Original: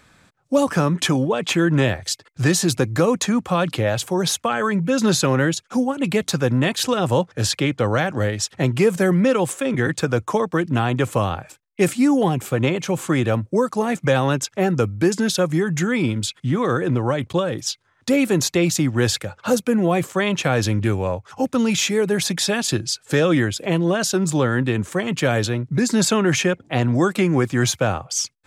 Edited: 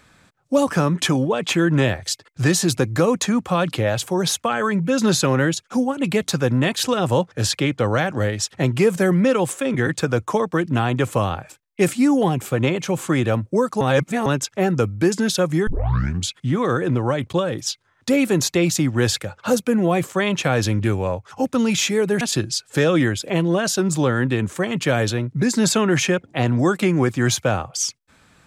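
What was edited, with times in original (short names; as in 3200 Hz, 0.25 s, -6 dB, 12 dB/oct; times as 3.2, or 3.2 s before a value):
13.81–14.26 reverse
15.67 tape start 0.62 s
22.21–22.57 cut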